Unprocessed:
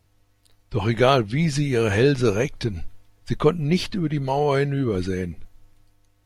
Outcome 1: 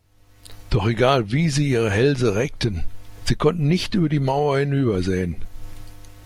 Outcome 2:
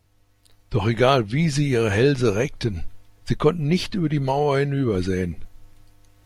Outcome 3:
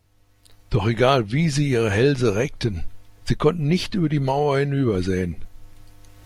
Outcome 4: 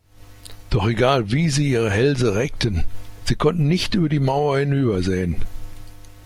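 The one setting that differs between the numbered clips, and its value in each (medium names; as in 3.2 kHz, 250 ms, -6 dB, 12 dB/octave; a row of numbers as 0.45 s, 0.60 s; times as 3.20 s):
recorder AGC, rising by: 35 dB/s, 5.7 dB/s, 14 dB/s, 86 dB/s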